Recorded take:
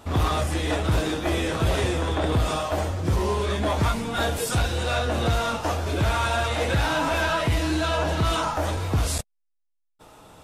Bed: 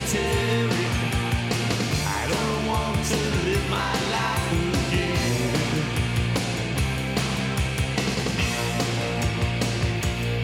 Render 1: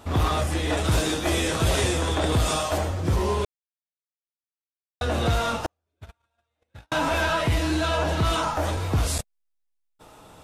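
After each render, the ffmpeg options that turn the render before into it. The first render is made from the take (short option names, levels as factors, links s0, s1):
-filter_complex "[0:a]asettb=1/sr,asplit=3[s0][s1][s2];[s0]atrim=end=0.774[s3];[s1]atrim=start=0.77:end=2.78,asetpts=PTS-STARTPTS,afade=t=in:d=0.004:c=qsin,afade=t=out:st=2.006:d=0.004:c=qsin,equalizer=f=8300:w=0.48:g=8.5[s4];[s2]atrim=start=2.776[s5];[s3][s4]acrossfade=d=0.004:c1=hsin:c2=qsin[s6];[s6][s5]acrossfade=d=0.004:c1=qsin:c2=hsin,asettb=1/sr,asplit=3[s7][s8][s9];[s7]atrim=end=5.664[s10];[s8]atrim=start=5.66:end=6.92,asetpts=PTS-STARTPTS,afade=t=in:d=0.004:c=qsin,afade=t=out:st=1.256:d=0.004:c=qsin,agate=range=0.00178:threshold=0.126:ratio=16:release=100:detection=peak[s11];[s9]atrim=start=6.916[s12];[s10][s11]acrossfade=d=0.004:c1=hsin:c2=qsin[s13];[s13][s12]acrossfade=d=0.004:c1=qsin:c2=hsin,asplit=3[s14][s15][s16];[s14]atrim=end=3.45,asetpts=PTS-STARTPTS,afade=t=out:st=3.446:d=0.004:c=hsin[s17];[s15]atrim=start=3.45:end=5.01,asetpts=PTS-STARTPTS,volume=0[s18];[s16]atrim=start=5.01,asetpts=PTS-STARTPTS,afade=t=in:d=0.004:c=hsin[s19];[s17][s18][s19]concat=n=3:v=0:a=1"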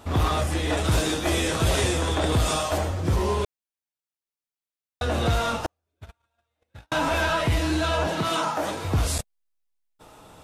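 -filter_complex "[0:a]asettb=1/sr,asplit=3[s0][s1][s2];[s0]atrim=end=8.074[s3];[s1]atrim=start=8.07:end=8.85,asetpts=PTS-STARTPTS,afade=t=in:d=0.004:c=qsin,afade=t=out:st=0.776:d=0.004:c=qsin,highpass=f=140:w=0.5412,highpass=f=140:w=1.3066[s4];[s2]atrim=start=8.846[s5];[s3][s4]acrossfade=d=0.004:c1=hsin:c2=qsin[s6];[s6][s5]acrossfade=d=0.004:c1=qsin:c2=hsin"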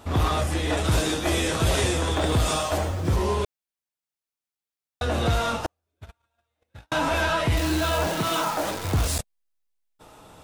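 -filter_complex "[0:a]asettb=1/sr,asplit=3[s0][s1][s2];[s0]atrim=end=2.164[s3];[s1]atrim=start=2.16:end=3.17,asetpts=PTS-STARTPTS,afade=t=in:d=0.004:c=qsin,afade=t=out:st=1.006:d=0.004:c=qsin,acrusher=bits=7:mix=0:aa=0.5[s4];[s2]atrim=start=3.166[s5];[s3][s4]acrossfade=d=0.004:c1=hsin:c2=qsin[s6];[s6][s5]acrossfade=d=0.004:c1=qsin:c2=hsin,asettb=1/sr,asplit=3[s7][s8][s9];[s7]atrim=end=7.574[s10];[s8]atrim=start=7.57:end=9.19,asetpts=PTS-STARTPTS,afade=t=in:d=0.004:c=qsin,afade=t=out:st=1.616:d=0.004:c=qsin,acrusher=bits=6:dc=4:mix=0:aa=0.000001[s11];[s9]atrim=start=9.186[s12];[s10][s11]acrossfade=d=0.004:c1=hsin:c2=qsin[s13];[s13][s12]acrossfade=d=0.004:c1=qsin:c2=hsin"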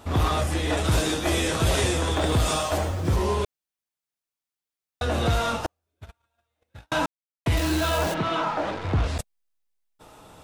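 -filter_complex "[0:a]asplit=3[s0][s1][s2];[s0]afade=t=out:st=8.13:d=0.02[s3];[s1]lowpass=2900,afade=t=in:st=8.13:d=0.02,afade=t=out:st=9.18:d=0.02[s4];[s2]afade=t=in:st=9.18:d=0.02[s5];[s3][s4][s5]amix=inputs=3:normalize=0,asplit=3[s6][s7][s8];[s6]atrim=end=7.06,asetpts=PTS-STARTPTS,afade=t=out:st=7.056:d=0.004:c=hsin[s9];[s7]atrim=start=7.06:end=7.46,asetpts=PTS-STARTPTS,volume=0[s10];[s8]atrim=start=7.46,asetpts=PTS-STARTPTS,afade=t=in:d=0.004:c=hsin[s11];[s9][s10][s11]concat=n=3:v=0:a=1"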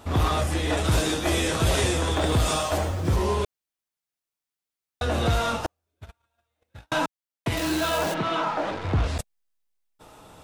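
-filter_complex "[0:a]asettb=1/sr,asplit=3[s0][s1][s2];[s0]atrim=end=6.944[s3];[s1]atrim=start=6.94:end=8.72,asetpts=PTS-STARTPTS,afade=t=in:d=0.004:c=qsin,afade=t=out:st=1.776:d=0.004:c=qsin,equalizer=f=63:w=1.5:g=-15[s4];[s2]atrim=start=8.716[s5];[s3][s4]acrossfade=d=0.004:c1=hsin:c2=qsin[s6];[s6][s5]acrossfade=d=0.004:c1=qsin:c2=hsin"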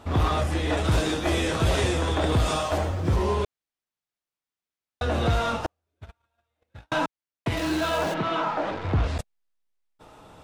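-af "lowpass=f=4000:p=1"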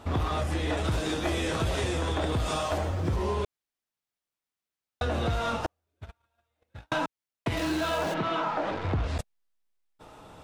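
-af "acompressor=threshold=0.0562:ratio=6"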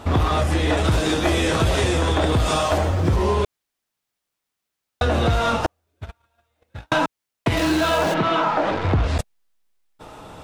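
-af "volume=2.82"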